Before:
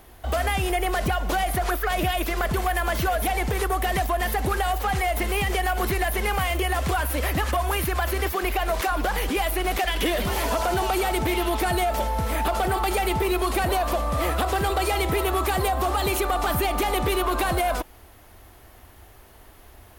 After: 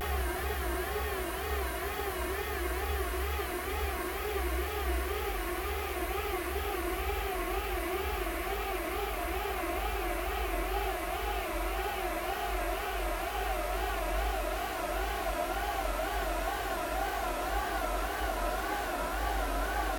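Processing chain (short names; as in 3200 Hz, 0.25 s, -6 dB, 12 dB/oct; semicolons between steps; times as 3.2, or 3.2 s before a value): Paulstretch 24×, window 1.00 s, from 8.09; wow and flutter 140 cents; gain -8.5 dB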